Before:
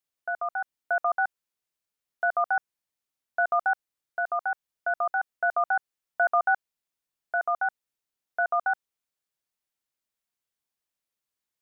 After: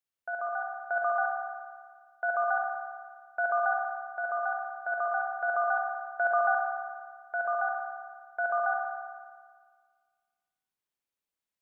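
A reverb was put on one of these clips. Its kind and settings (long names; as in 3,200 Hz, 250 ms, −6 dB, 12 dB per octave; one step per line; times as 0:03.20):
spring reverb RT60 1.7 s, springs 56 ms, chirp 75 ms, DRR −0.5 dB
level −5.5 dB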